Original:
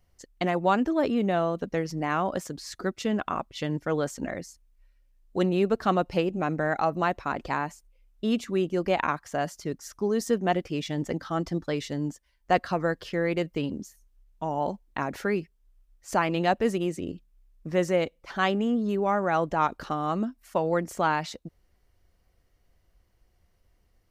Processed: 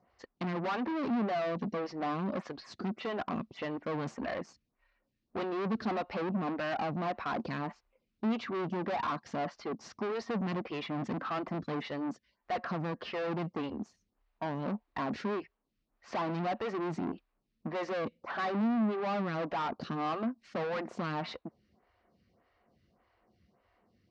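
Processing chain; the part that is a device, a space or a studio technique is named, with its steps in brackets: vibe pedal into a guitar amplifier (photocell phaser 1.7 Hz; tube stage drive 40 dB, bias 0.4; speaker cabinet 110–4400 Hz, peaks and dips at 220 Hz +8 dB, 720 Hz +4 dB, 1100 Hz +5 dB, 3300 Hz -4 dB); gain +6.5 dB

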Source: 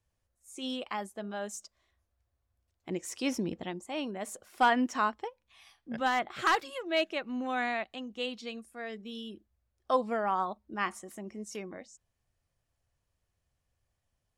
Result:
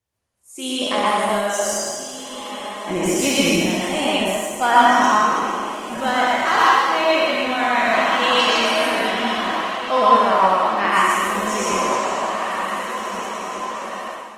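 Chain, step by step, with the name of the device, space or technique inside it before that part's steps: spectral trails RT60 2.00 s; 8.23–9.01 high shelf 2800 Hz +5.5 dB; diffused feedback echo 1.652 s, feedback 53%, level -11 dB; far-field microphone of a smart speaker (reverb RT60 0.40 s, pre-delay 0.111 s, DRR -3.5 dB; HPF 160 Hz 6 dB/oct; AGC gain up to 11.5 dB; gain -1 dB; Opus 20 kbps 48000 Hz)

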